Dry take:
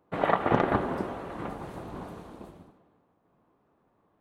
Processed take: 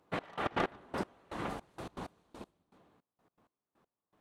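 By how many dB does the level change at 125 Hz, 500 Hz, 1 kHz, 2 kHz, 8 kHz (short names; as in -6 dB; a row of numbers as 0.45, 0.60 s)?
-11.0, -10.5, -10.0, -6.5, +1.0 dB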